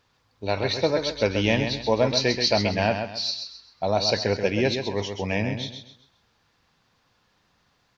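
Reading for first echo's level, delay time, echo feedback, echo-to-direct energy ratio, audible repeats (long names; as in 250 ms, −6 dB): −7.0 dB, 131 ms, 33%, −6.5 dB, 3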